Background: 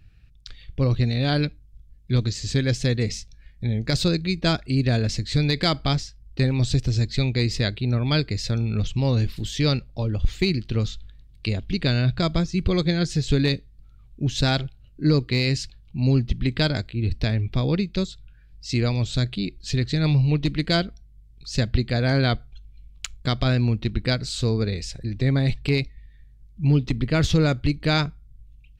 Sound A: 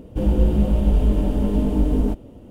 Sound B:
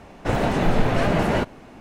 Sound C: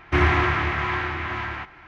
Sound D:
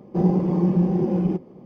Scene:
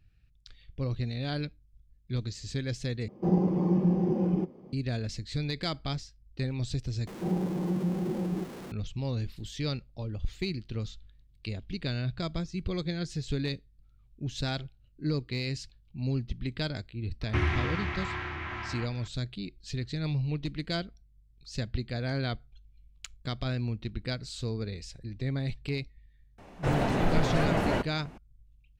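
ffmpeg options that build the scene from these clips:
-filter_complex "[4:a]asplit=2[a][b];[0:a]volume=-11dB[c];[b]aeval=exprs='val(0)+0.5*0.0473*sgn(val(0))':c=same[d];[3:a]acrossover=split=310|2400[e][f][g];[f]acompressor=threshold=-31dB:ratio=2.5:attack=22:release=599:knee=2.83:detection=peak[h];[e][h][g]amix=inputs=3:normalize=0[i];[c]asplit=3[j][k][l];[j]atrim=end=3.084[m];[a]atrim=end=1.65,asetpts=PTS-STARTPTS,volume=-5.5dB[n];[k]atrim=start=4.726:end=7.074[o];[d]atrim=end=1.65,asetpts=PTS-STARTPTS,volume=-11.5dB[p];[l]atrim=start=8.716[q];[i]atrim=end=1.87,asetpts=PTS-STARTPTS,volume=-7dB,afade=t=in:d=0.004:c=hsin,afade=t=out:st=1.866:d=0.004:c=hsin,adelay=17210[r];[2:a]atrim=end=1.8,asetpts=PTS-STARTPTS,volume=-6.5dB,afade=t=in:d=0.004:c=hsin,afade=t=out:st=1.796:d=0.004:c=hsin,adelay=26380[s];[m][n]acrossfade=d=0.004:c1=hsin:c2=hsin[t];[t][o]acrossfade=d=0.004:c1=hsin:c2=hsin[u];[u][p]acrossfade=d=0.004:c1=hsin:c2=hsin[v];[v][q]acrossfade=d=0.004:c1=hsin:c2=hsin[w];[w][r][s]amix=inputs=3:normalize=0"

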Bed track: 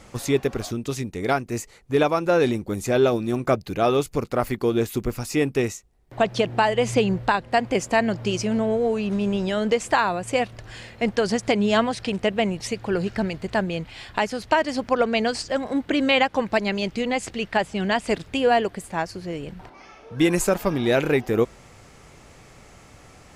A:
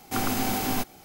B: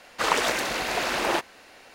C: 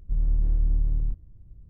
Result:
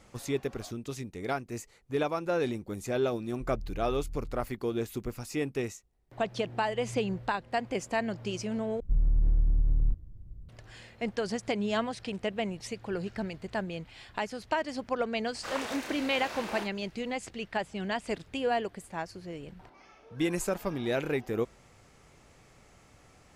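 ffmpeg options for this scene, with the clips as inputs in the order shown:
-filter_complex "[3:a]asplit=2[a][b];[0:a]volume=-10dB[c];[b]alimiter=level_in=19dB:limit=-1dB:release=50:level=0:latency=1[d];[2:a]asplit=2[e][f];[f]adelay=30,volume=-4dB[g];[e][g]amix=inputs=2:normalize=0[h];[c]asplit=2[i][j];[i]atrim=end=8.804[k];[d]atrim=end=1.69,asetpts=PTS-STARTPTS,volume=-17.5dB[l];[j]atrim=start=10.486[m];[a]atrim=end=1.69,asetpts=PTS-STARTPTS,volume=-17dB,afade=t=in:d=0.004:c=hsin,afade=t=out:st=1.686:d=0.004:c=hsin,adelay=3310[n];[h]atrim=end=1.94,asetpts=PTS-STARTPTS,volume=-15dB,afade=t=in:d=0.004:c=hsin,afade=t=out:st=1.936:d=0.004:c=hsin,adelay=672084S[o];[k][l]acrossfade=d=0.004:c1=hsin:c2=hsin[p];[p][m]acrossfade=d=0.004:c1=hsin:c2=hsin[q];[q][n][o]amix=inputs=3:normalize=0"

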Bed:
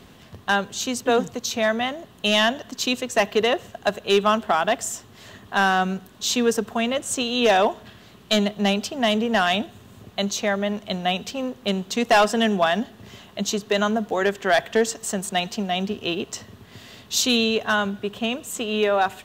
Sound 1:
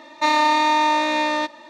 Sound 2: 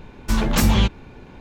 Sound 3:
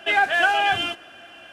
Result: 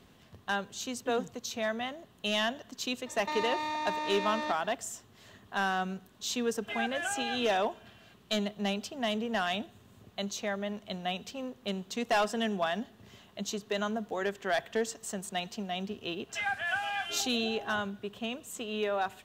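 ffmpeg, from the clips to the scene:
-filter_complex "[3:a]asplit=2[a][b];[0:a]volume=-11dB[c];[1:a]acompressor=threshold=-24dB:ratio=6:attack=3.2:release=140:knee=1:detection=peak[d];[b]acrossover=split=620|4000[e][f][g];[g]adelay=40[h];[e]adelay=740[i];[i][f][h]amix=inputs=3:normalize=0[j];[d]atrim=end=1.69,asetpts=PTS-STARTPTS,volume=-7.5dB,afade=t=in:d=0.004:c=hsin,afade=t=out:st=1.686:d=0.004:c=hsin,adelay=3060[k];[a]atrim=end=1.52,asetpts=PTS-STARTPTS,volume=-16.5dB,afade=t=in:d=0.004:c=hsin,afade=t=out:st=1.516:d=0.004:c=hsin,adelay=6620[l];[j]atrim=end=1.52,asetpts=PTS-STARTPTS,volume=-12dB,afade=t=in:d=0.004:c=hsin,afade=t=out:st=1.516:d=0.004:c=hsin,adelay=16290[m];[c][k][l][m]amix=inputs=4:normalize=0"

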